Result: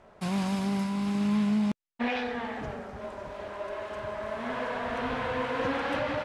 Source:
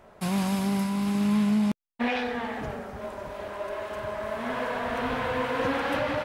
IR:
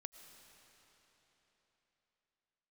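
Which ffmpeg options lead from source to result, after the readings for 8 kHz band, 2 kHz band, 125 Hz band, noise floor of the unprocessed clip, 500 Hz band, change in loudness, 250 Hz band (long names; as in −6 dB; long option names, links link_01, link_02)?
can't be measured, −2.5 dB, −2.5 dB, −54 dBFS, −2.5 dB, −2.5 dB, −2.5 dB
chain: -af "lowpass=7800,volume=-2.5dB"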